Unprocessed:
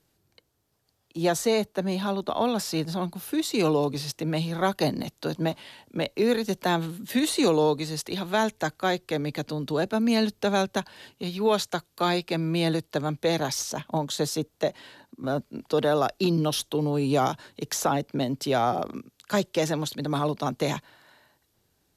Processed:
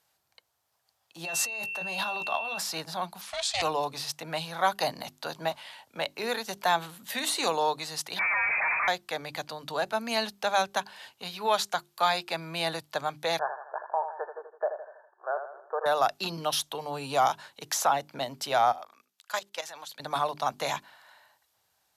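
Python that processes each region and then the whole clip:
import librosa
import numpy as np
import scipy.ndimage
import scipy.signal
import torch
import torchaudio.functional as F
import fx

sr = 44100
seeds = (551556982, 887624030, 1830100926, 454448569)

y = fx.doubler(x, sr, ms=18.0, db=-8.5, at=(1.24, 2.57), fade=0.02)
y = fx.over_compress(y, sr, threshold_db=-32.0, ratio=-1.0, at=(1.24, 2.57), fade=0.02)
y = fx.dmg_tone(y, sr, hz=2700.0, level_db=-33.0, at=(1.24, 2.57), fade=0.02)
y = fx.chain(y, sr, fx.lowpass(hz=8400.0, slope=24),
    fx.tilt_shelf(db=-6.5, hz=830.0),
    fx.ring_mod(carrier_hz=330.0), at=(3.21, 3.62))
y = fx.chain(y, sr, fx.clip_1bit(),
    fx.freq_invert(carrier_hz=2500), at=(8.19, 8.88))
y = fx.chain(y, sr, fx.law_mismatch(coded='A'),
    fx.brickwall_bandpass(low_hz=350.0, high_hz=1800.0),
    fx.echo_feedback(ms=81, feedback_pct=48, wet_db=-8.5), at=(13.39, 15.86))
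y = fx.chain(y, sr, fx.highpass(hz=950.0, slope=6),
    fx.level_steps(step_db=14), at=(18.72, 20.0))
y = scipy.signal.sosfilt(scipy.signal.butter(2, 53.0, 'highpass', fs=sr, output='sos'), y)
y = fx.low_shelf_res(y, sr, hz=520.0, db=-12.5, q=1.5)
y = fx.hum_notches(y, sr, base_hz=50, count=8)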